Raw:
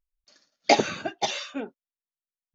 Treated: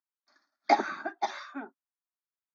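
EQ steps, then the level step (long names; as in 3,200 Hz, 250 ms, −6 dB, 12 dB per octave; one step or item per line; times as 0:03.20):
high-pass filter 300 Hz 24 dB per octave
high-frequency loss of the air 260 metres
phaser with its sweep stopped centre 1,200 Hz, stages 4
+3.0 dB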